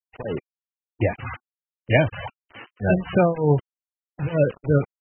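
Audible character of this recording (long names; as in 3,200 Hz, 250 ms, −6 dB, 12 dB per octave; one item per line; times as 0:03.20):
a buzz of ramps at a fixed pitch in blocks of 8 samples
tremolo triangle 3.2 Hz, depth 95%
a quantiser's noise floor 6 bits, dither none
MP3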